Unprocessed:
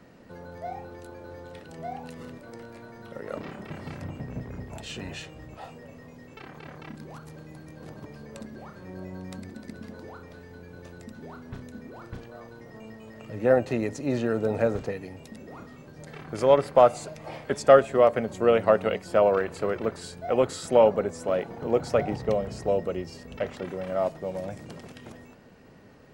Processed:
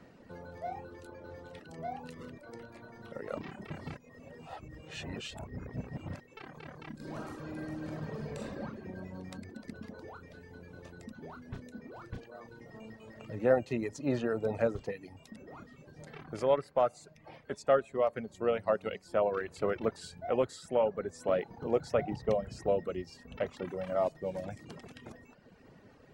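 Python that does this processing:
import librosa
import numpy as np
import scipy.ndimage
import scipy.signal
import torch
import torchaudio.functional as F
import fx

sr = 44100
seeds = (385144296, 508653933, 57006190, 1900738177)

y = fx.reverb_throw(x, sr, start_s=6.95, length_s=1.65, rt60_s=2.3, drr_db=-6.5)
y = fx.edit(y, sr, fx.reverse_span(start_s=3.97, length_s=2.23), tone=tone)
y = fx.dereverb_blind(y, sr, rt60_s=0.85)
y = fx.high_shelf(y, sr, hz=8800.0, db=-6.5)
y = fx.rider(y, sr, range_db=4, speed_s=0.5)
y = y * 10.0 ** (-6.5 / 20.0)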